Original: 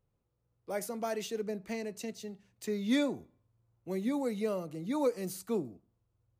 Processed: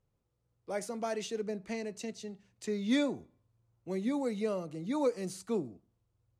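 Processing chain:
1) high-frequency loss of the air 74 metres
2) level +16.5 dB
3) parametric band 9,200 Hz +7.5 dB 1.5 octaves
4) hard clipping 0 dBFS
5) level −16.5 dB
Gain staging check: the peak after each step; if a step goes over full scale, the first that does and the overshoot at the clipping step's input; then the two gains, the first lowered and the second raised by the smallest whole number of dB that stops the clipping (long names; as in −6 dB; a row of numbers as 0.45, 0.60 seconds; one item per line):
−20.0, −3.5, −3.0, −3.0, −19.5 dBFS
no step passes full scale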